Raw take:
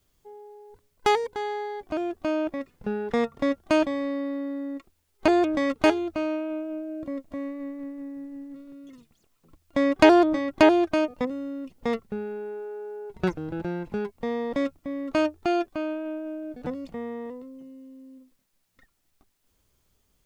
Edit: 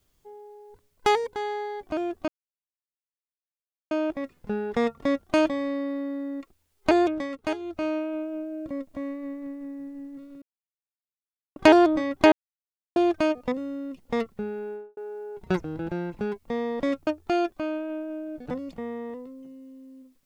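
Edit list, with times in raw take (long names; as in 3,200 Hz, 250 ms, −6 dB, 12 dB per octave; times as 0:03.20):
0:02.28: splice in silence 1.63 s
0:05.39–0:06.22: duck −9 dB, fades 0.26 s
0:08.79–0:09.93: silence
0:10.69: splice in silence 0.64 s
0:12.42–0:12.70: fade out and dull
0:14.80–0:15.23: remove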